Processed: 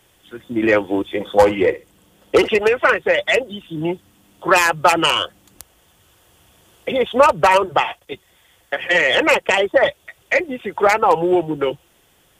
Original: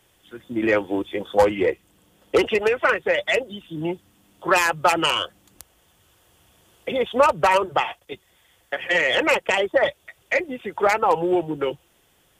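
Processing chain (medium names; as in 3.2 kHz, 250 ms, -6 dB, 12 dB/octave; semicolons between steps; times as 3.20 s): 1.04–2.48 s: flutter echo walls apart 11.2 m, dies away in 0.23 s; trim +4.5 dB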